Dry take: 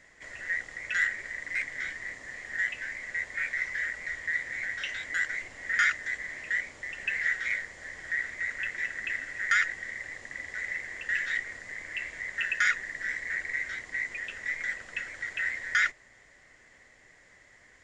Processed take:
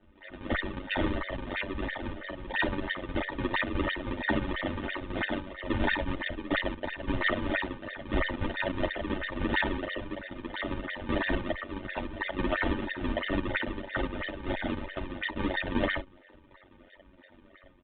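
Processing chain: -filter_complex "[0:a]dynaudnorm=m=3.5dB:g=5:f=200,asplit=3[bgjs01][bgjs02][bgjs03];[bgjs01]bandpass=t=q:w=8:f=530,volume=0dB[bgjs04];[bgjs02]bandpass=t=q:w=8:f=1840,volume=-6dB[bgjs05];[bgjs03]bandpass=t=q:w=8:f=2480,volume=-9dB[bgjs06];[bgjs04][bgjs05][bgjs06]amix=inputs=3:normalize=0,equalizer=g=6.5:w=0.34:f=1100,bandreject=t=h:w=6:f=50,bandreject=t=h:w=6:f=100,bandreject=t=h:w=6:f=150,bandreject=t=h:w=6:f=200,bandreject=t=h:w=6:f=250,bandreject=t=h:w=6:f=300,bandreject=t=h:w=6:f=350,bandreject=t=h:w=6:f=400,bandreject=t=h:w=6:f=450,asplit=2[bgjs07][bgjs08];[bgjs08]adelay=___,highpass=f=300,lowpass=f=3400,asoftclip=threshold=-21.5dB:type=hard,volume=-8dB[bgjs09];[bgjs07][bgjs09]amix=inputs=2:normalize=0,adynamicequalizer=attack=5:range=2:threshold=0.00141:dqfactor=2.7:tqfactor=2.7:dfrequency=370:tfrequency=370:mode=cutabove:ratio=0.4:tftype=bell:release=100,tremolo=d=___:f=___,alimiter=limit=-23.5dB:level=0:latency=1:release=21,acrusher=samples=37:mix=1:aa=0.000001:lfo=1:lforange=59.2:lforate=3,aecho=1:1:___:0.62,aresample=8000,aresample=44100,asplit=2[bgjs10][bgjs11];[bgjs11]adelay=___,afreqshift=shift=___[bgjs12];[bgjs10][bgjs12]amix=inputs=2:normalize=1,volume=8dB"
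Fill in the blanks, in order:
130, 1, 95, 3.3, 9.6, -1.9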